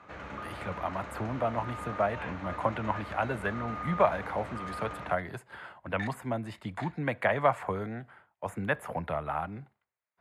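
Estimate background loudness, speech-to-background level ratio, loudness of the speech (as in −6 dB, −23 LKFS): −40.5 LKFS, 7.5 dB, −33.0 LKFS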